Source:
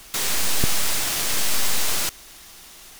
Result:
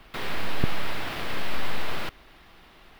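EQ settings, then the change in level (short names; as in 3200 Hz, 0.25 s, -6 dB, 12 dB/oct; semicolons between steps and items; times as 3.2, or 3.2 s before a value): air absorption 420 m; high shelf 11000 Hz +9.5 dB; 0.0 dB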